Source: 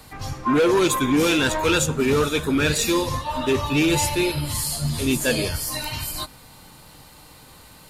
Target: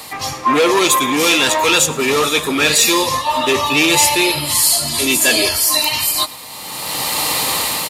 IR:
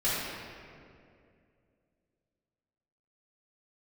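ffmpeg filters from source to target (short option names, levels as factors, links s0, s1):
-filter_complex "[0:a]asettb=1/sr,asplit=3[s0][s1][s2];[s0]atrim=end=4.634[s3];[s1]atrim=start=4.63:end=5.89,asetpts=PTS-STARTPTS,afade=t=in:d=0.004:c=qsin,afade=t=out:st=1.256:d=0.004:c=qsin,aecho=1:1:3:0.59,atrim=end_sample=55566[s4];[s2]atrim=start=5.886[s5];[s3][s4]acrossfade=d=0.004:c1=hsin:c2=qsin[s6];[s6][s5]acrossfade=d=0.004:c1=qsin:c2=hsin,apsyclip=7.5,highpass=f=770:p=1,bandreject=f=1500:w=5.2,asplit=2[s7][s8];[s8]aecho=0:1:110|220|330|440:0.0841|0.0421|0.021|0.0105[s9];[s7][s9]amix=inputs=2:normalize=0,dynaudnorm=f=190:g=7:m=6.68,volume=0.891"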